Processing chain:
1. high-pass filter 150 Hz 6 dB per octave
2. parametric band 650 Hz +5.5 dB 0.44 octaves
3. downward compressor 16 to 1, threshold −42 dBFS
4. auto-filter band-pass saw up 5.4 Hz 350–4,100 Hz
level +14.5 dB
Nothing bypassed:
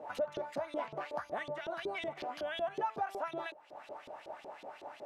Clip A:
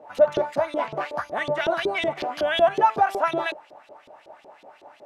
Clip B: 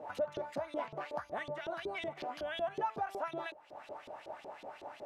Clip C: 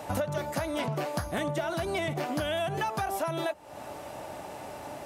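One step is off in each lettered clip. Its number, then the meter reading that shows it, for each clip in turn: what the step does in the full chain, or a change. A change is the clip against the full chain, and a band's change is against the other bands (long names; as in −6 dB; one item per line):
3, average gain reduction 9.5 dB
1, 125 Hz band +2.5 dB
4, 125 Hz band +15.0 dB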